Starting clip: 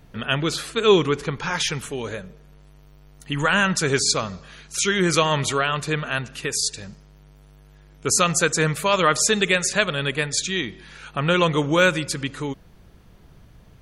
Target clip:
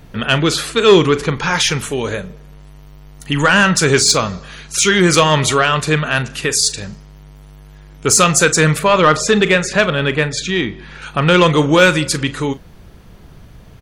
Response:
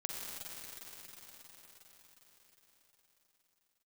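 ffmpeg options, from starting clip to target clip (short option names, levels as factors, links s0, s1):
-filter_complex "[0:a]asettb=1/sr,asplit=3[s0][s1][s2];[s0]atrim=end=8.794[s3];[s1]atrim=start=8.79:end=11.02,asetpts=PTS-STARTPTS,afade=t=in:d=0.004:c=qsin,afade=t=out:st=2.226:d=0.004:c=qsin,aemphasis=mode=reproduction:type=75fm[s4];[s2]atrim=start=11.016[s5];[s3][s4]acrossfade=d=0.004:c1=hsin:c2=qsin[s6];[s6][s5]acrossfade=d=0.004:c1=qsin:c2=hsin,asoftclip=type=tanh:threshold=0.282,asplit=2[s7][s8];[s8]adelay=39,volume=0.2[s9];[s7][s9]amix=inputs=2:normalize=0,volume=2.82"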